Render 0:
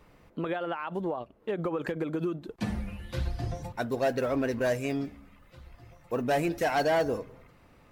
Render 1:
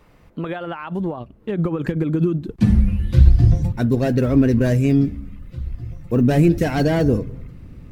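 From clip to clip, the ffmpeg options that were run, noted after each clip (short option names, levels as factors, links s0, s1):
-af "asubboost=boost=9.5:cutoff=250,volume=1.68"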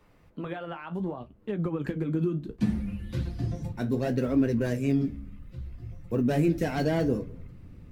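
-filter_complex "[0:a]acrossover=split=160[s0][s1];[s0]acompressor=threshold=0.0447:ratio=6[s2];[s2][s1]amix=inputs=2:normalize=0,flanger=delay=9.6:depth=9.9:regen=-52:speed=0.66:shape=sinusoidal,volume=0.631"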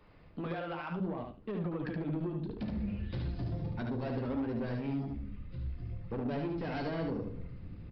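-af "acompressor=threshold=0.0316:ratio=4,aresample=11025,asoftclip=type=tanh:threshold=0.0251,aresample=44100,aecho=1:1:73|146|219:0.631|0.107|0.0182"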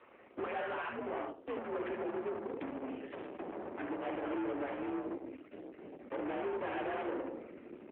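-af "aeval=exprs='(tanh(158*val(0)+0.75)-tanh(0.75))/158':c=same,highpass=f=240:t=q:w=0.5412,highpass=f=240:t=q:w=1.307,lowpass=f=2900:t=q:w=0.5176,lowpass=f=2900:t=q:w=0.7071,lowpass=f=2900:t=q:w=1.932,afreqshift=57,volume=3.35" -ar 8000 -c:a libopencore_amrnb -b:a 7950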